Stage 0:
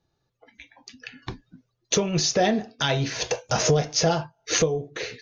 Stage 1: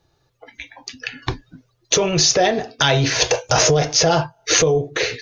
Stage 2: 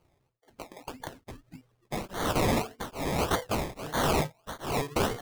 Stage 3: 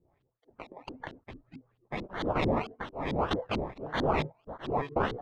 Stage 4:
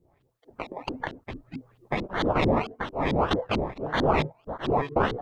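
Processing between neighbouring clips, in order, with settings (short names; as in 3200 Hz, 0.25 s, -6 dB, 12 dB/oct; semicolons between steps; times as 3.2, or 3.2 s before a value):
in parallel at +2 dB: negative-ratio compressor -26 dBFS, ratio -1; on the sum: bell 210 Hz -14.5 dB 0.36 oct; gain +2.5 dB
decimation with a swept rate 24×, swing 60% 1.7 Hz; wrapped overs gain 15.5 dB; beating tremolo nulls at 1.2 Hz; gain -4 dB
LFO low-pass saw up 4.5 Hz 260–4000 Hz; gain -3.5 dB
recorder AGC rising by 8 dB/s; gain +5 dB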